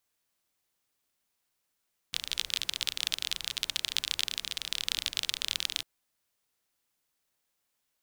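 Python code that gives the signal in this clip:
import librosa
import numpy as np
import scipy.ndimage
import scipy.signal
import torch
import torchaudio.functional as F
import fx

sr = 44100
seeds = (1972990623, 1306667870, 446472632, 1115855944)

y = fx.rain(sr, seeds[0], length_s=3.7, drops_per_s=32.0, hz=3500.0, bed_db=-19.0)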